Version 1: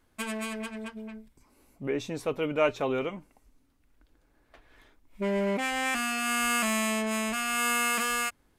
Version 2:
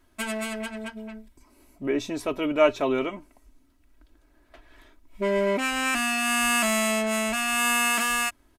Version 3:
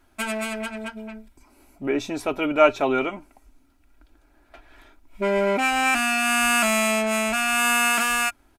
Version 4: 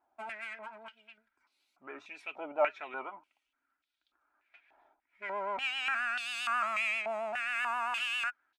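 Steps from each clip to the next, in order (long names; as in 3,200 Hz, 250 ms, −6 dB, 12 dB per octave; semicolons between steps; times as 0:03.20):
comb filter 3.1 ms, depth 60%; level +3 dB
hollow resonant body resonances 800/1,400/2,400 Hz, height 12 dB, ringing for 45 ms; level +1.5 dB
pitch vibrato 7.5 Hz 66 cents; band-pass on a step sequencer 3.4 Hz 790–3,700 Hz; level −3.5 dB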